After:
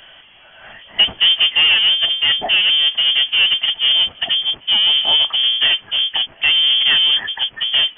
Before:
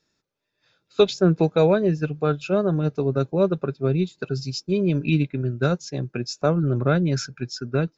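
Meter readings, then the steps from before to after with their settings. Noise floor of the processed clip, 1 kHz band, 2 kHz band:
−45 dBFS, +0.5 dB, +16.0 dB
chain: power curve on the samples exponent 0.5
voice inversion scrambler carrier 3,300 Hz

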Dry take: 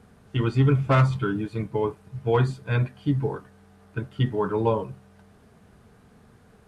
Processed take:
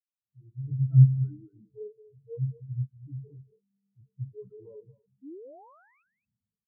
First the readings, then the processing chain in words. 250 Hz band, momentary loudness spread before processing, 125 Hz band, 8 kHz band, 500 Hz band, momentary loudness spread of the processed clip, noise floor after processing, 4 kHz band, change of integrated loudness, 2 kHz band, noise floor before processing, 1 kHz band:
−8.5 dB, 13 LU, −1.5 dB, can't be measured, −19.0 dB, 25 LU, below −85 dBFS, below −40 dB, −0.5 dB, below −35 dB, −55 dBFS, below −25 dB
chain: fade in at the beginning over 0.76 s
hum removal 88.33 Hz, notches 6
transient designer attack −7 dB, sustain −1 dB
sound drawn into the spectrogram rise, 0:05.22–0:06.03, 250–2,700 Hz −29 dBFS
power curve on the samples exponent 0.35
on a send: single-tap delay 227 ms −4 dB
on the sum: every bin expanded away from the loudest bin 4 to 1

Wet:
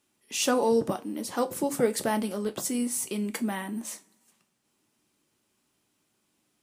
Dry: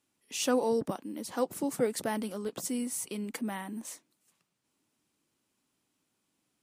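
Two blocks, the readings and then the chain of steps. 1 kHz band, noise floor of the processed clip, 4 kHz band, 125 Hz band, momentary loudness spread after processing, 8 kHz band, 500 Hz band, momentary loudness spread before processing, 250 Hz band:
+5.5 dB, −75 dBFS, +5.0 dB, +5.0 dB, 10 LU, +5.0 dB, +4.0 dB, 11 LU, +4.5 dB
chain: coupled-rooms reverb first 0.23 s, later 1.8 s, from −27 dB, DRR 7.5 dB
level +4.5 dB

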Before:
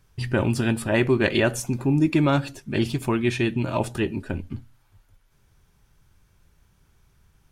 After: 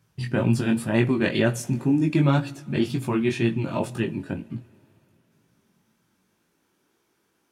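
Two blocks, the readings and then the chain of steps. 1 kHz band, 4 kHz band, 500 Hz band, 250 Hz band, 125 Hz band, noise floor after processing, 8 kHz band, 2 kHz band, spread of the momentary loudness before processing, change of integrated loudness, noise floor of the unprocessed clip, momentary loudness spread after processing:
−2.5 dB, −3.0 dB, −2.0 dB, +0.5 dB, +0.5 dB, −71 dBFS, −3.0 dB, −3.0 dB, 10 LU, −0.5 dB, −62 dBFS, 10 LU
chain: chorus effect 2 Hz, delay 17 ms, depth 4.8 ms
coupled-rooms reverb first 0.25 s, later 3.3 s, from −18 dB, DRR 16 dB
high-pass filter sweep 140 Hz → 320 Hz, 0:05.05–0:06.87

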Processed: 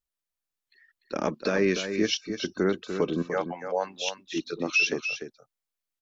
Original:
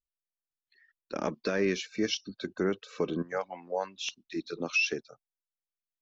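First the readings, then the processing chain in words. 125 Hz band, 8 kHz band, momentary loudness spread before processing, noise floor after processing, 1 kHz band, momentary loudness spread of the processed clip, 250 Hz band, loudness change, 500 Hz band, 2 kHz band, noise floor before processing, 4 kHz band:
+4.5 dB, can't be measured, 11 LU, below −85 dBFS, +4.5 dB, 10 LU, +4.5 dB, +4.5 dB, +4.5 dB, +4.5 dB, below −85 dBFS, +4.5 dB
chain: single-tap delay 295 ms −8.5 dB
level +4 dB

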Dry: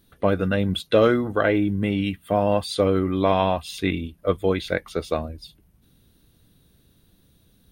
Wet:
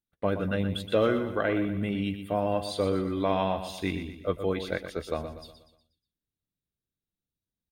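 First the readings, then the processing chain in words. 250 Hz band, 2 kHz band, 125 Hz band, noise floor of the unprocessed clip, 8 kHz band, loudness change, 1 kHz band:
−6.5 dB, −6.5 dB, −6.5 dB, −60 dBFS, −6.5 dB, −6.5 dB, −6.5 dB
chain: noise gate −48 dBFS, range −27 dB
on a send: repeating echo 121 ms, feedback 44%, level −10 dB
on the sum: level −7 dB

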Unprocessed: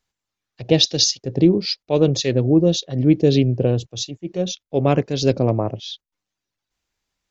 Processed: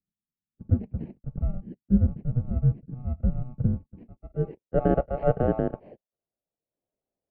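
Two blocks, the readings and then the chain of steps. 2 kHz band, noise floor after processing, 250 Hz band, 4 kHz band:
−13.0 dB, below −85 dBFS, −10.0 dB, below −40 dB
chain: samples in bit-reversed order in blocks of 32 samples
single-sideband voice off tune −390 Hz 460–3,600 Hz
low-pass filter sweep 200 Hz → 630 Hz, 0:03.88–0:04.83

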